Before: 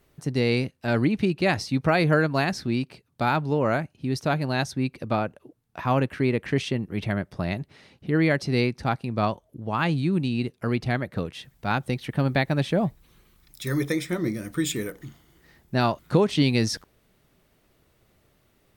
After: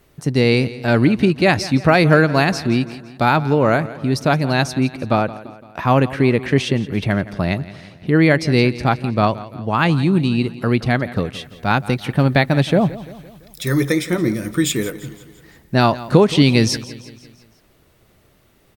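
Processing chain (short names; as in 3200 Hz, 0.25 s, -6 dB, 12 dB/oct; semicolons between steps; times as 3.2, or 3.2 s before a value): feedback echo 0.17 s, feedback 53%, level -17 dB; gain +8 dB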